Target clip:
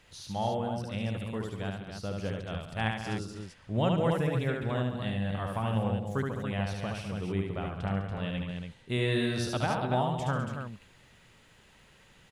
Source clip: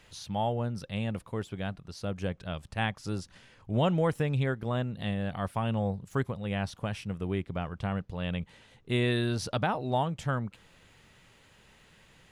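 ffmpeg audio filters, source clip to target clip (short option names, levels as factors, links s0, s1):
-af "aecho=1:1:72|141|204|283:0.668|0.266|0.282|0.473,volume=0.75"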